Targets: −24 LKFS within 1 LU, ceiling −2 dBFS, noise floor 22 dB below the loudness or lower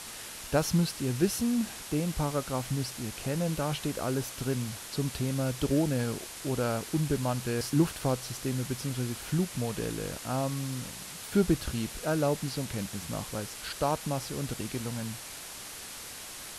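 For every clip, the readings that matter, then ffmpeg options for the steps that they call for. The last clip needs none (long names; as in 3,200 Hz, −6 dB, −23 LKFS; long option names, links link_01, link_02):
background noise floor −43 dBFS; target noise floor −54 dBFS; integrated loudness −31.5 LKFS; sample peak −12.0 dBFS; target loudness −24.0 LKFS
→ -af "afftdn=noise_reduction=11:noise_floor=-43"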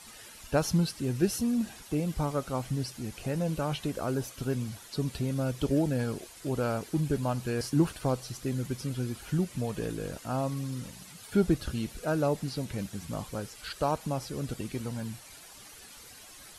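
background noise floor −50 dBFS; target noise floor −54 dBFS
→ -af "afftdn=noise_reduction=6:noise_floor=-50"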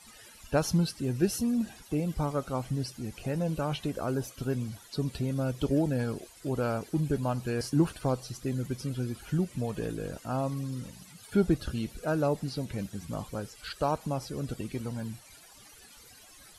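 background noise floor −54 dBFS; integrated loudness −32.0 LKFS; sample peak −12.0 dBFS; target loudness −24.0 LKFS
→ -af "volume=8dB"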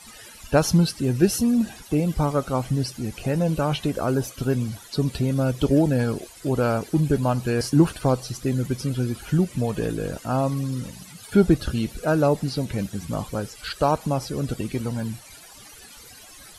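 integrated loudness −24.0 LKFS; sample peak −4.0 dBFS; background noise floor −46 dBFS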